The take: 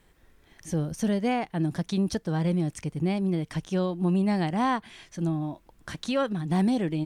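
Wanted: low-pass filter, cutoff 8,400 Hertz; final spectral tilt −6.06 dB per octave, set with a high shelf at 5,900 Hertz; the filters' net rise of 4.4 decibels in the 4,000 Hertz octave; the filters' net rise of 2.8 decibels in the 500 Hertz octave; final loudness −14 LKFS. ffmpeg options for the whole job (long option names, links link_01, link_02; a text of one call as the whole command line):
ffmpeg -i in.wav -af "lowpass=8400,equalizer=frequency=500:width_type=o:gain=3.5,equalizer=frequency=4000:width_type=o:gain=3.5,highshelf=frequency=5900:gain=6.5,volume=12.5dB" out.wav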